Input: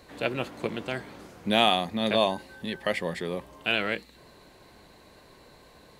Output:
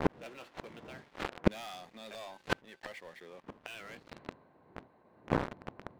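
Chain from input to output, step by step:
wind on the microphone 160 Hz −33 dBFS
mains-hum notches 60/120 Hz
noise gate with hold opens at −40 dBFS
meter weighting curve A
low-pass that shuts in the quiet parts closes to 930 Hz, open at −24.5 dBFS
high-shelf EQ 4,200 Hz −4.5 dB
speech leveller within 3 dB 2 s
leveller curve on the samples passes 5
gate with flip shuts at −16 dBFS, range −39 dB
level +6 dB

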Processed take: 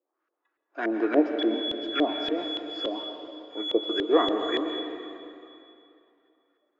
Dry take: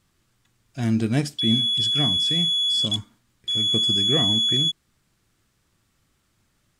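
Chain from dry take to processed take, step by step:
noise reduction from a noise print of the clip's start 13 dB
Chebyshev band-pass filter 300–6,800 Hz, order 5
auto-filter low-pass saw up 3.5 Hz 480–1,800 Hz
on a send: convolution reverb RT60 2.7 s, pre-delay 107 ms, DRR 5.5 dB
on the sum: level +4 dB

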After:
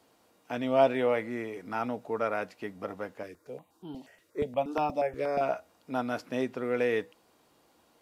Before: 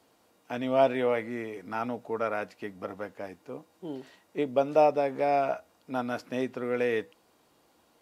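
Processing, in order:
0:03.23–0:05.41: step-sequenced phaser 8.4 Hz 220–2,000 Hz

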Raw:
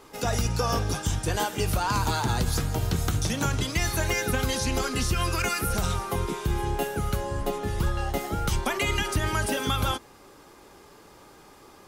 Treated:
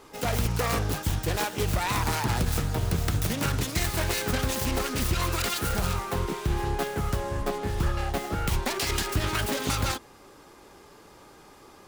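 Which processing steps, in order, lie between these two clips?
phase distortion by the signal itself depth 0.34 ms

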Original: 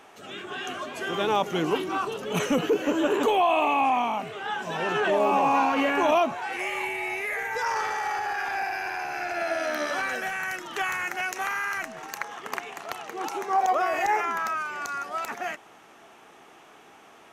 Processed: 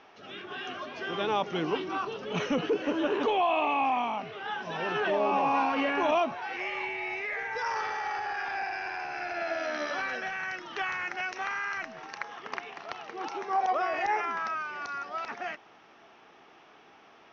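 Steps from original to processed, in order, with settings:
elliptic low-pass filter 5,600 Hz, stop band 40 dB
level −3.5 dB

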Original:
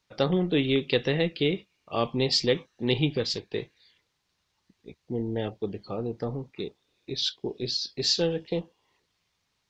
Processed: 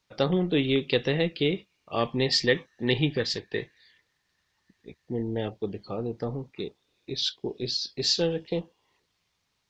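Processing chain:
0:01.98–0:05.24: parametric band 1,800 Hz +13.5 dB 0.21 octaves

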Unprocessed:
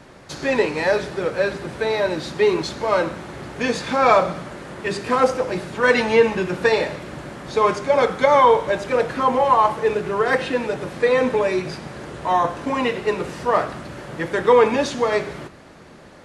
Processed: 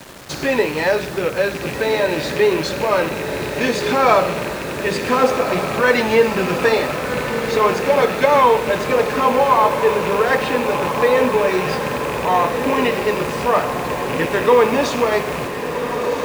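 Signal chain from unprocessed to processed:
loose part that buzzes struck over −33 dBFS, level −22 dBFS
in parallel at +1 dB: downward compressor, threshold −26 dBFS, peak gain reduction 15.5 dB
on the sum: bit-depth reduction 6 bits, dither none
feedback delay with all-pass diffusion 1,443 ms, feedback 68%, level −7.5 dB
level −1 dB

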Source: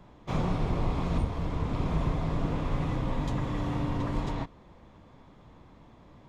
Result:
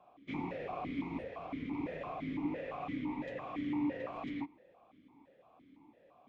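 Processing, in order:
dynamic equaliser 2,000 Hz, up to +7 dB, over −60 dBFS, Q 2.4
formant filter that steps through the vowels 5.9 Hz
level +4 dB

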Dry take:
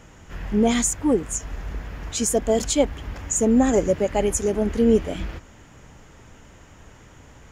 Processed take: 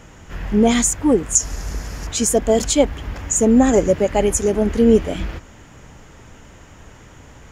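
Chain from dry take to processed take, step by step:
0:01.35–0:02.07: flat-topped bell 7,600 Hz +15 dB
boost into a limiter +5.5 dB
level −1 dB

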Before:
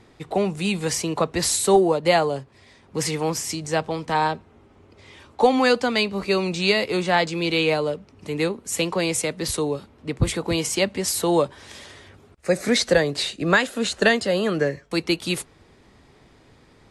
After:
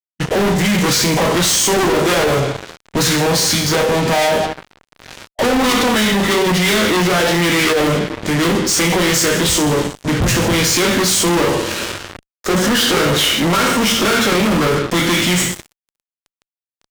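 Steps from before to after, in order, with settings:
coupled-rooms reverb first 0.51 s, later 2.1 s, from −22 dB, DRR 0 dB
fuzz pedal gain 37 dB, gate −39 dBFS
formants moved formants −4 semitones

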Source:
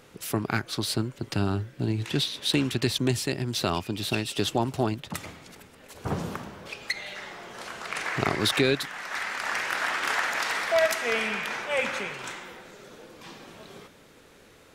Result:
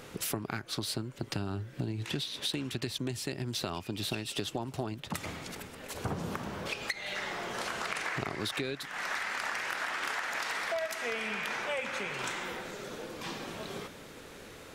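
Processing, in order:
downward compressor 10 to 1, threshold −37 dBFS, peak gain reduction 19 dB
level +5.5 dB

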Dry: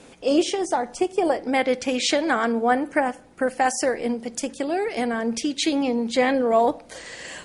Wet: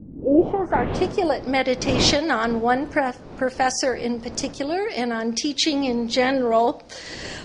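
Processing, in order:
wind on the microphone 430 Hz −33 dBFS
low-pass filter sweep 210 Hz → 5,300 Hz, 0:00.10–0:01.06

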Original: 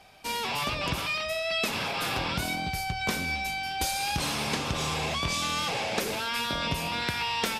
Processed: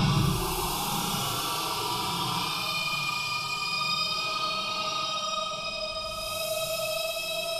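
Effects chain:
extreme stretch with random phases 17×, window 0.05 s, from 0:00.92
phaser with its sweep stopped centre 380 Hz, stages 8
level +6 dB

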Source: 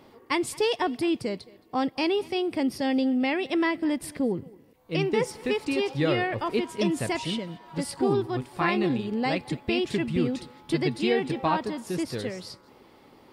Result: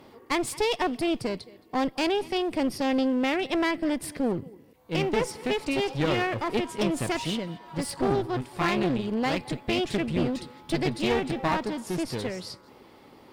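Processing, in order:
asymmetric clip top −33.5 dBFS
level +2 dB

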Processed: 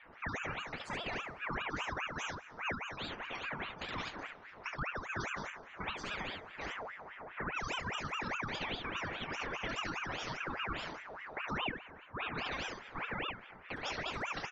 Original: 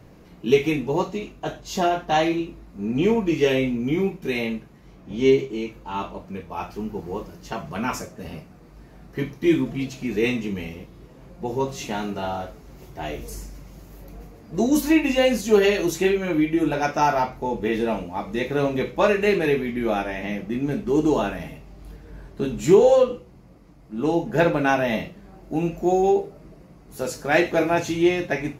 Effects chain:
low-pass filter 2,900 Hz 24 dB per octave
gate on every frequency bin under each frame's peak −20 dB strong
downward compressor, threshold −28 dBFS, peak gain reduction 17 dB
change of speed 1.97×
on a send: ambience of single reflections 28 ms −9 dB, 71 ms −4 dB
on the sum: dense smooth reverb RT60 3.2 s, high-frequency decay 0.75×, DRR 17 dB
ring modulator whose carrier an LFO sweeps 1,300 Hz, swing 60%, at 4.9 Hz
level −7 dB

